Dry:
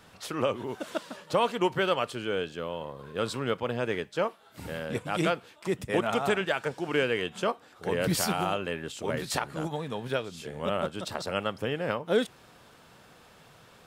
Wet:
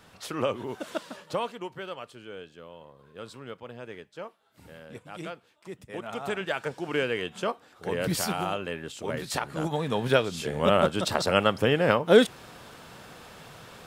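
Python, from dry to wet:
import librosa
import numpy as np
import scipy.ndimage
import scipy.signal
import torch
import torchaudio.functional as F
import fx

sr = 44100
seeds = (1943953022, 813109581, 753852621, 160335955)

y = fx.gain(x, sr, db=fx.line((1.2, 0.0), (1.65, -11.5), (5.92, -11.5), (6.55, -1.0), (9.31, -1.0), (10.03, 8.0)))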